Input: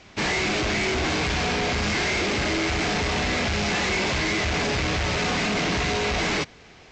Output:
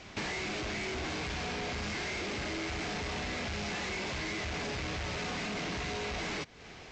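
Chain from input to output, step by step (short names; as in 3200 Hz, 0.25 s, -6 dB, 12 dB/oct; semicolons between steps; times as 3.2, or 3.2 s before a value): compressor 5:1, threshold -37 dBFS, peak gain reduction 12.5 dB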